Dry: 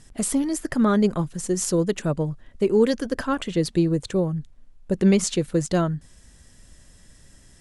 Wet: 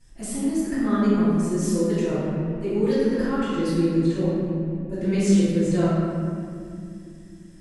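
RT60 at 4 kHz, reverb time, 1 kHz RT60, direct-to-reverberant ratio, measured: 1.5 s, 2.5 s, 2.2 s, -16.5 dB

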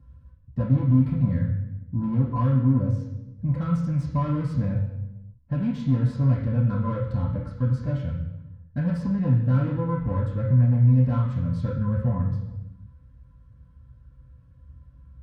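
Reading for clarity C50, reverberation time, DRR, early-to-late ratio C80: 6.0 dB, 0.95 s, -8.0 dB, 9.0 dB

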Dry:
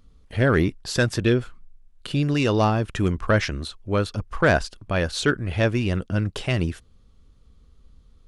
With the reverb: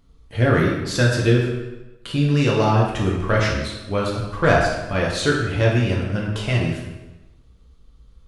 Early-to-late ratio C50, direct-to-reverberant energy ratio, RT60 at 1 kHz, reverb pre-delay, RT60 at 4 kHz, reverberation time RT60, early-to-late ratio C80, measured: 2.5 dB, -3.5 dB, 1.1 s, 3 ms, 0.90 s, 1.1 s, 4.5 dB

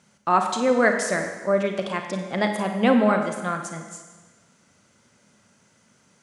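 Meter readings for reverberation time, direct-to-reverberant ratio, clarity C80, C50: 1.3 s, 4.5 dB, 7.0 dB, 5.5 dB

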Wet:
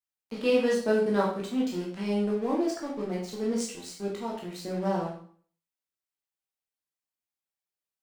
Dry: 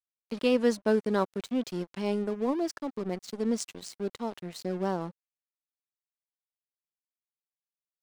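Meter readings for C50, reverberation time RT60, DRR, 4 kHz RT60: 4.5 dB, 0.50 s, -4.5 dB, 0.45 s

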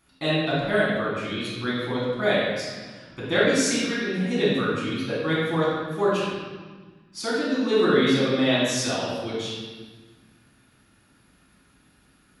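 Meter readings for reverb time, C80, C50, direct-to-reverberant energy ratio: 1.4 s, 1.0 dB, -2.0 dB, -8.0 dB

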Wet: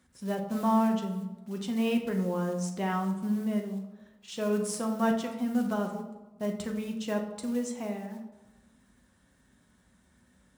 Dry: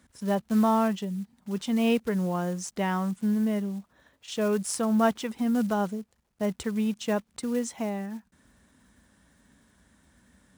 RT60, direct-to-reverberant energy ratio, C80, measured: 1.1 s, 2.0 dB, 10.5 dB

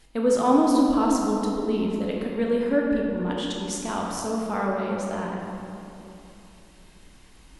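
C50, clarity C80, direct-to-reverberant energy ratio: 0.0 dB, 1.5 dB, -2.0 dB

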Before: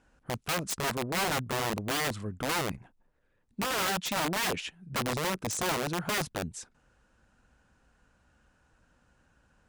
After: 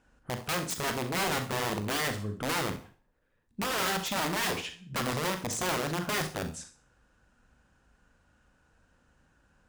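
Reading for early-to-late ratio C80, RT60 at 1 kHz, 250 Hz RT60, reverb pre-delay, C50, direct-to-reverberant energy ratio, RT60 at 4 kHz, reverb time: 16.0 dB, 0.40 s, 0.35 s, 38 ms, 10.0 dB, 6.0 dB, 0.45 s, 0.40 s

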